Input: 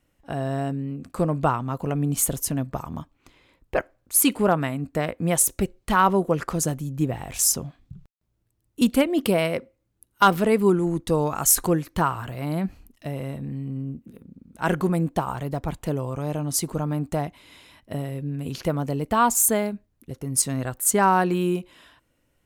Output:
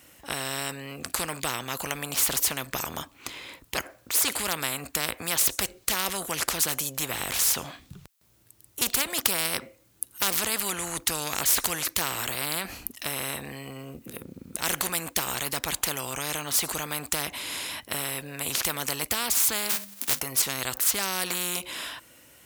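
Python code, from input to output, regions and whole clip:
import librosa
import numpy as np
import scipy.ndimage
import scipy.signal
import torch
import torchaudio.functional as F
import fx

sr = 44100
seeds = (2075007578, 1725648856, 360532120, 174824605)

y = fx.envelope_flatten(x, sr, power=0.3, at=(19.69, 20.19), fade=0.02)
y = fx.hum_notches(y, sr, base_hz=50, count=6, at=(19.69, 20.19), fade=0.02)
y = scipy.signal.sosfilt(scipy.signal.butter(2, 48.0, 'highpass', fs=sr, output='sos'), y)
y = fx.tilt_eq(y, sr, slope=2.5)
y = fx.spectral_comp(y, sr, ratio=4.0)
y = y * librosa.db_to_amplitude(-2.5)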